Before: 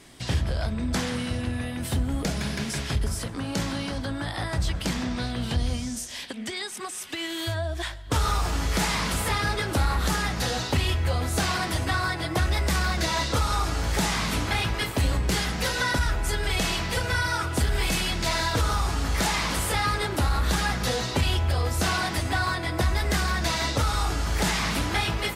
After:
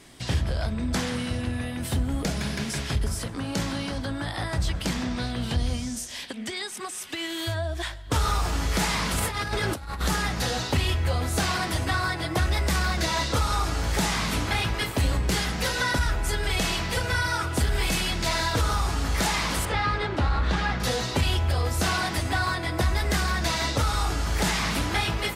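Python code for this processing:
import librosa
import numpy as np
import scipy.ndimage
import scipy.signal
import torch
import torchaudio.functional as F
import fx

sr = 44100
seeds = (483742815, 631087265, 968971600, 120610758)

y = fx.over_compress(x, sr, threshold_db=-28.0, ratio=-0.5, at=(9.18, 10.03))
y = fx.lowpass(y, sr, hz=3600.0, slope=12, at=(19.65, 20.8))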